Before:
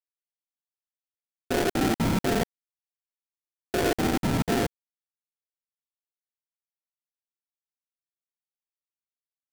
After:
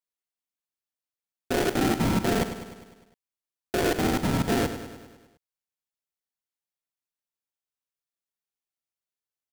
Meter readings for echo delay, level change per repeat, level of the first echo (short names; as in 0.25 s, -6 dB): 0.101 s, -4.5 dB, -11.0 dB